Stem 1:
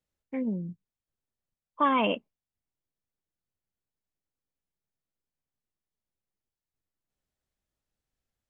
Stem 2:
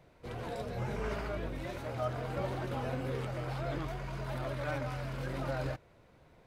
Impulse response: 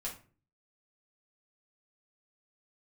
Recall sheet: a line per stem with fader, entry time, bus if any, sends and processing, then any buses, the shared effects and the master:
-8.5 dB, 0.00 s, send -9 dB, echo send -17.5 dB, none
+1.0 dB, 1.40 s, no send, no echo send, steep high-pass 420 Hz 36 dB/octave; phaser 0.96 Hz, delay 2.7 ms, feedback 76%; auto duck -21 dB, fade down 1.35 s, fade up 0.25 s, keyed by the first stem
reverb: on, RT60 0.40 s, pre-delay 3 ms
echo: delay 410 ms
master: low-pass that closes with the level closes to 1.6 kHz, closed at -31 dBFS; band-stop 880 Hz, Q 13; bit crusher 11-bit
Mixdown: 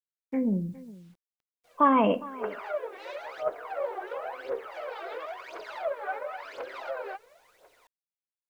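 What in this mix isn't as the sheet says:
stem 1 -8.5 dB -> +2.0 dB; master: missing band-stop 880 Hz, Q 13

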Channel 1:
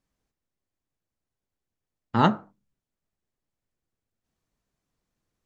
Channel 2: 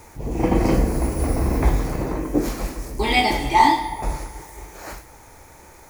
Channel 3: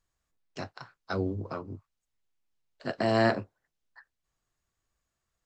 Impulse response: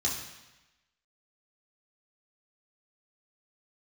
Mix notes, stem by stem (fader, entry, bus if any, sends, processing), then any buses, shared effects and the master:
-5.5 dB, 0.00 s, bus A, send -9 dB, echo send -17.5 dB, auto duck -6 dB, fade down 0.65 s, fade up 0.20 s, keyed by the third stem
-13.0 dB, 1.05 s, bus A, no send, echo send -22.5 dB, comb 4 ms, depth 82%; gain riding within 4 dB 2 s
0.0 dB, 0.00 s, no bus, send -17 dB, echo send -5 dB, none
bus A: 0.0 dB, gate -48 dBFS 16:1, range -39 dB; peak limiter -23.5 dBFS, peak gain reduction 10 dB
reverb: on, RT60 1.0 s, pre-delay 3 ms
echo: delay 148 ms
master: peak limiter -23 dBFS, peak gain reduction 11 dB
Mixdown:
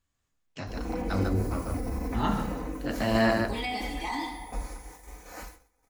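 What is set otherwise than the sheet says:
stem 2: entry 1.05 s -> 0.50 s; stem 3: send -17 dB -> -11 dB; master: missing peak limiter -23 dBFS, peak gain reduction 11 dB

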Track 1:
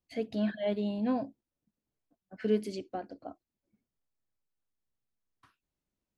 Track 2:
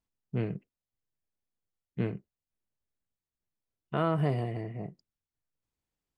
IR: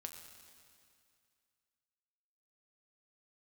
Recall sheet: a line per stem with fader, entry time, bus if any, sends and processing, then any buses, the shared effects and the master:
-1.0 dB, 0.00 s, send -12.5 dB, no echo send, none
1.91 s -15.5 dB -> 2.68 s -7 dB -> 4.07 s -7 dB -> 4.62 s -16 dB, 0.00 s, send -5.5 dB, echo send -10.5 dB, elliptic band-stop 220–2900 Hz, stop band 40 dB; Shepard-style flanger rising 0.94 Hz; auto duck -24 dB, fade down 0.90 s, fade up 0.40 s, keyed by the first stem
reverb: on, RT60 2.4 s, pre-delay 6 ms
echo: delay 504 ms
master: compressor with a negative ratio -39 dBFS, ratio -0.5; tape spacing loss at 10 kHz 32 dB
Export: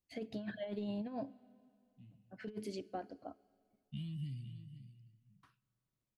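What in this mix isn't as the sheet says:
stem 1 -1.0 dB -> -8.0 dB; master: missing tape spacing loss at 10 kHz 32 dB

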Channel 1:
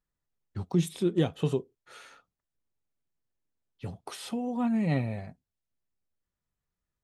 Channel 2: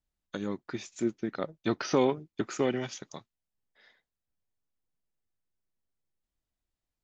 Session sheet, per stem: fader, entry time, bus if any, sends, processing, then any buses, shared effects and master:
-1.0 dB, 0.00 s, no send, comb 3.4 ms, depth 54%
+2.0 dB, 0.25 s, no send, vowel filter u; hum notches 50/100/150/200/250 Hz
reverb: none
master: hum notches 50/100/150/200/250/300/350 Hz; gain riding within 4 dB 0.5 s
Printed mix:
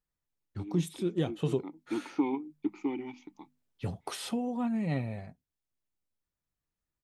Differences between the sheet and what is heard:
stem 1: missing comb 3.4 ms, depth 54%; master: missing hum notches 50/100/150/200/250/300/350 Hz

